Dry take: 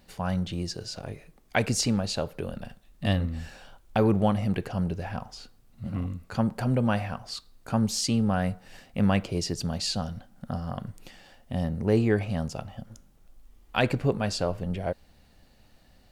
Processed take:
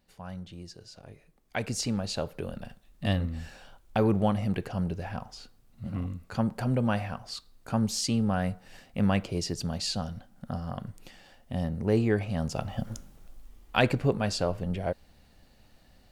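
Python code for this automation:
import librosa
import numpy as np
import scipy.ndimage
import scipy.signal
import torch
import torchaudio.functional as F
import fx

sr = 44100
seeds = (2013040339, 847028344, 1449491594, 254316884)

y = fx.gain(x, sr, db=fx.line((0.95, -12.0), (2.22, -2.0), (12.32, -2.0), (12.88, 9.5), (13.96, -0.5)))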